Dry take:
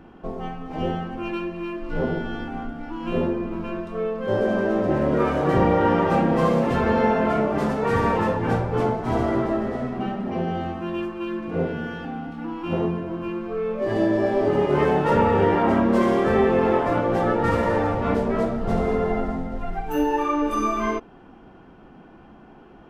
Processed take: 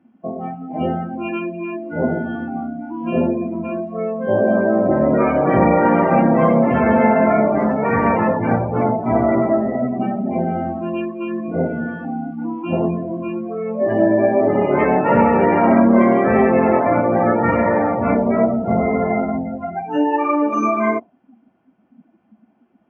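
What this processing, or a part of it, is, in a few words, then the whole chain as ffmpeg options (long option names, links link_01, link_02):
car door speaker: -af "highpass=55,highpass=83,equalizer=frequency=240:width_type=q:width=4:gain=5,equalizer=frequency=440:width_type=q:width=4:gain=-4,equalizer=frequency=640:width_type=q:width=4:gain=7,equalizer=frequency=2200:width_type=q:width=4:gain=7,equalizer=frequency=4000:width_type=q:width=4:gain=-7,lowpass=frequency=6900:width=0.5412,lowpass=frequency=6900:width=1.3066,bandreject=frequency=50:width_type=h:width=6,bandreject=frequency=100:width_type=h:width=6,bandreject=frequency=150:width_type=h:width=6,afftdn=noise_reduction=22:noise_floor=-29,volume=4dB"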